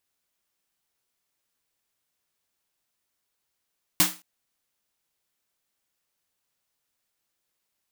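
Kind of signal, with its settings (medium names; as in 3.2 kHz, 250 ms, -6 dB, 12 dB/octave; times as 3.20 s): snare drum length 0.22 s, tones 180 Hz, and 310 Hz, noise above 580 Hz, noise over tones 10 dB, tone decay 0.27 s, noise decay 0.30 s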